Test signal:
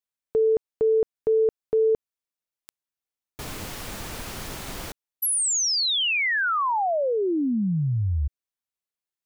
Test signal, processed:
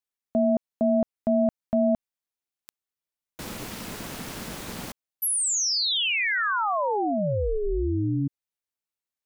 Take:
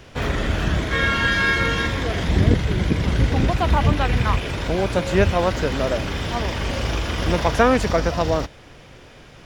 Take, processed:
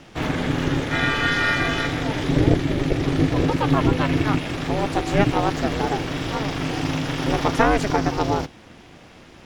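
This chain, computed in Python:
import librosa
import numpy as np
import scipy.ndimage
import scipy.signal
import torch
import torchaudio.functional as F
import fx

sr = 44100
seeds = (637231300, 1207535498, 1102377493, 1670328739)

y = x * np.sin(2.0 * np.pi * 210.0 * np.arange(len(x)) / sr)
y = F.gain(torch.from_numpy(y), 1.5).numpy()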